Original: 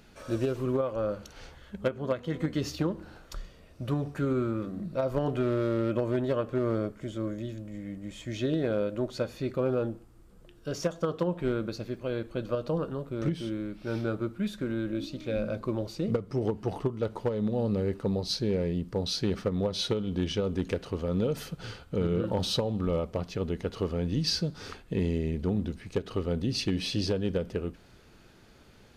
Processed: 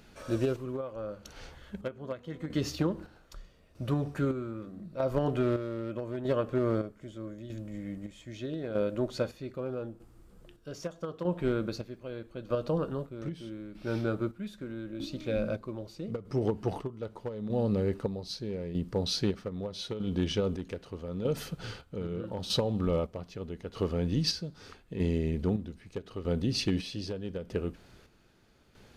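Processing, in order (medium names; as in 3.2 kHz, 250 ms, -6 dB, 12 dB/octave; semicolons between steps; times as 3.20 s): square tremolo 0.8 Hz, depth 60%, duty 45%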